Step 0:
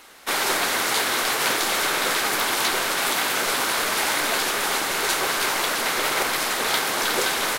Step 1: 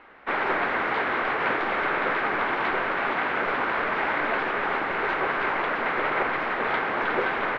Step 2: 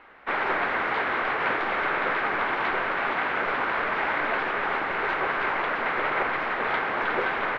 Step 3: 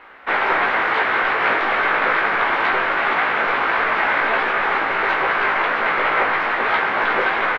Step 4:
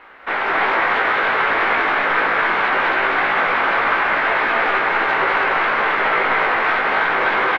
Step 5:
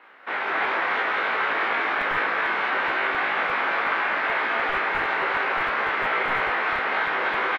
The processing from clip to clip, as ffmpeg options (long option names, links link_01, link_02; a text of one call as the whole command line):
ffmpeg -i in.wav -af "lowpass=frequency=2200:width=0.5412,lowpass=frequency=2200:width=1.3066" out.wav
ffmpeg -i in.wav -af "equalizer=frequency=270:width_type=o:width=2:gain=-3" out.wav
ffmpeg -i in.wav -filter_complex "[0:a]lowshelf=frequency=470:gain=-5.5,asplit=2[link_01][link_02];[link_02]adelay=18,volume=-4dB[link_03];[link_01][link_03]amix=inputs=2:normalize=0,volume=7dB" out.wav
ffmpeg -i in.wav -filter_complex "[0:a]alimiter=limit=-11.5dB:level=0:latency=1,asplit=2[link_01][link_02];[link_02]aecho=0:1:198.3|268.2:0.708|0.794[link_03];[link_01][link_03]amix=inputs=2:normalize=0" out.wav
ffmpeg -i in.wav -filter_complex "[0:a]acrossover=split=130|1300[link_01][link_02][link_03];[link_01]acrusher=bits=5:mix=0:aa=0.000001[link_04];[link_03]asplit=2[link_05][link_06];[link_06]adelay=30,volume=-2dB[link_07];[link_05][link_07]amix=inputs=2:normalize=0[link_08];[link_04][link_02][link_08]amix=inputs=3:normalize=0,volume=-7.5dB" out.wav